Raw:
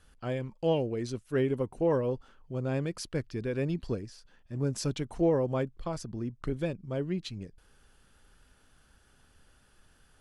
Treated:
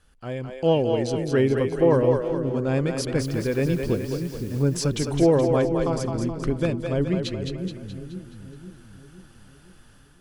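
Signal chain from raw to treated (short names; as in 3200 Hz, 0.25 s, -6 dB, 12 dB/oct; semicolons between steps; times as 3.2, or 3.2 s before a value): AGC gain up to 7.5 dB; 3.2–4.62 added noise white -52 dBFS; split-band echo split 340 Hz, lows 0.511 s, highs 0.212 s, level -5 dB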